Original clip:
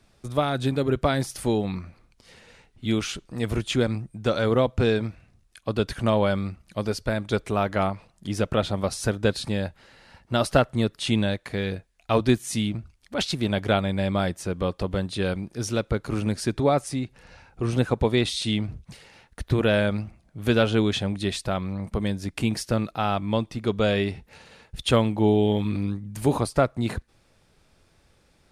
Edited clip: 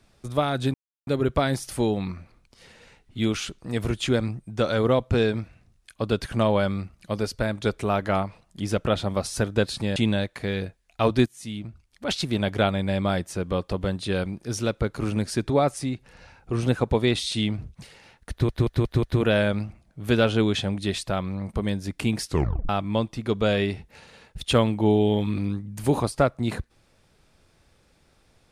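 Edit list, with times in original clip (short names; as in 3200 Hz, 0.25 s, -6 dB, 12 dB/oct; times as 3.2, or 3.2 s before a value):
0.74 insert silence 0.33 s
9.63–11.06 cut
12.36–13.29 fade in linear, from -16.5 dB
19.41 stutter 0.18 s, 5 plays
22.63 tape stop 0.44 s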